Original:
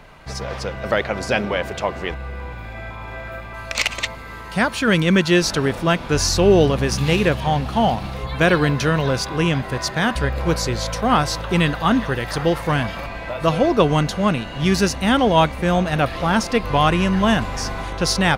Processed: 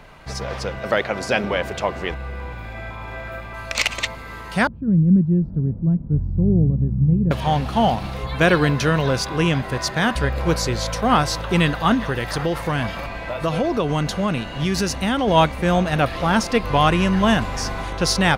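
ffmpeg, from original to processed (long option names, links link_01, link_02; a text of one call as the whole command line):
ffmpeg -i in.wav -filter_complex "[0:a]asettb=1/sr,asplit=3[link_01][link_02][link_03];[link_01]atrim=end=0.794[link_04];[link_02]atrim=start=0.79:end=1.44,asetpts=PTS-STARTPTS,afade=type=in:duration=0.004:curve=qsin,afade=type=out:start_time=0.646:duration=0.004:curve=qsin,highpass=frequency=130:poles=1[link_05];[link_03]atrim=start=1.436[link_06];[link_04][link_05]acrossfade=duration=0.004:curve1=hsin:curve2=qsin[link_07];[link_07][link_06]acrossfade=duration=0.004:curve1=qsin:curve2=hsin,asettb=1/sr,asplit=3[link_08][link_09][link_10];[link_08]atrim=end=4.674[link_11];[link_09]atrim=start=4.67:end=7.31,asetpts=PTS-STARTPTS,afade=type=in:duration=0.004:curve=qsin,afade=type=out:start_time=2.636:duration=0.004:curve=qsin,lowpass=frequency=170:width_type=q:width=1.7[link_12];[link_10]atrim=start=7.306[link_13];[link_11][link_12]acrossfade=duration=0.004:curve1=hsin:curve2=qsin[link_14];[link_14][link_13]acrossfade=duration=0.004:curve1=qsin:curve2=hsin,asettb=1/sr,asplit=3[link_15][link_16][link_17];[link_15]atrim=end=11.944[link_18];[link_16]atrim=start=11.94:end=15.28,asetpts=PTS-STARTPTS,afade=type=in:duration=0.004:curve=qsin,afade=type=out:start_time=3.336:duration=0.004:curve=qsin,acompressor=threshold=-17dB:ratio=4:attack=3.2:release=140:knee=1:detection=peak[link_19];[link_17]atrim=start=15.276[link_20];[link_18][link_19]acrossfade=duration=0.004:curve1=hsin:curve2=qsin[link_21];[link_21][link_20]acrossfade=duration=0.004:curve1=qsin:curve2=hsin" out.wav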